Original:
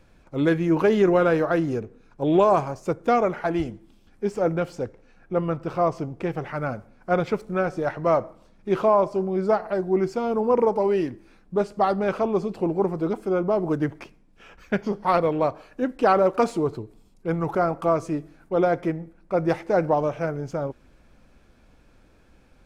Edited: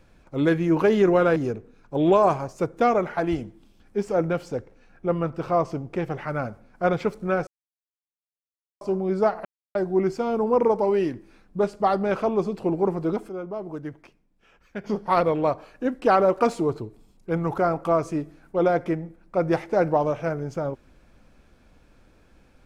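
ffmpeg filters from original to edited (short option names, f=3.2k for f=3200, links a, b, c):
-filter_complex "[0:a]asplit=7[a][b][c][d][e][f][g];[a]atrim=end=1.362[h];[b]atrim=start=1.628:end=7.74,asetpts=PTS-STARTPTS,afade=t=out:st=6.108:d=0.004:c=hsin[i];[c]atrim=start=7.74:end=9.08,asetpts=PTS-STARTPTS,volume=0[j];[d]atrim=start=9.08:end=9.72,asetpts=PTS-STARTPTS,afade=t=in:d=0.004:c=hsin,afade=t=out:st=0.636:d=0.004:c=hsin,apad=pad_dur=0.3[k];[e]atrim=start=9.72:end=13.262,asetpts=PTS-STARTPTS,afade=t=in:d=0.004:c=hsin[l];[f]atrim=start=13.258:end=14.812,asetpts=PTS-STARTPTS,volume=-10dB[m];[g]atrim=start=14.808[n];[i][j][k][l]concat=n=4:v=0:a=1[o];[h][o]acrossfade=d=0.004:c1=hsin:c2=hsin[p];[p][m]acrossfade=d=0.004:c1=hsin:c2=hsin[q];[q][n]acrossfade=d=0.004:c1=hsin:c2=hsin"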